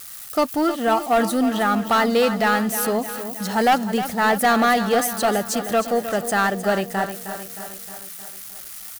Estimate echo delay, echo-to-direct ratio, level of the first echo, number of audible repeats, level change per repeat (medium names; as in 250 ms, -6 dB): 311 ms, -9.5 dB, -11.0 dB, 5, -5.0 dB